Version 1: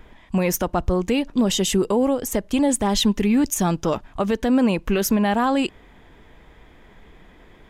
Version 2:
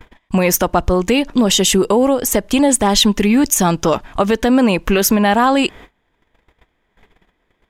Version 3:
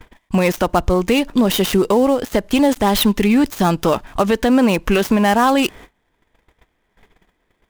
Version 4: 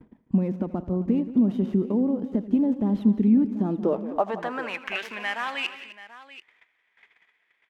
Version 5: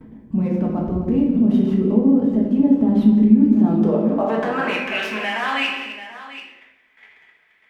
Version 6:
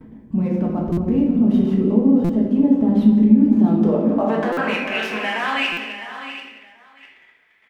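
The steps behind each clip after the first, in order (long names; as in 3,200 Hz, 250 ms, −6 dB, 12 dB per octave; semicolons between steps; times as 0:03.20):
noise gate −43 dBFS, range −27 dB; low-shelf EQ 410 Hz −5.5 dB; in parallel at +2 dB: downward compressor, threshold −29 dBFS, peak gain reduction 11 dB; on the sum: level +6 dB
gap after every zero crossing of 0.069 ms; level −1 dB
downward compressor 1.5 to 1, threshold −31 dBFS, peak gain reduction 7.5 dB; band-pass filter sweep 220 Hz → 2,200 Hz, 0:03.56–0:04.83; multi-tap delay 81/175/258/734 ms −18.5/−15.5/−16.5/−16 dB; level +4 dB
brickwall limiter −21.5 dBFS, peak gain reduction 10.5 dB; rectangular room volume 280 cubic metres, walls mixed, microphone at 1.5 metres; level +5.5 dB
single-tap delay 657 ms −13 dB; buffer that repeats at 0:00.92/0:02.24/0:04.52/0:05.72, samples 256, times 8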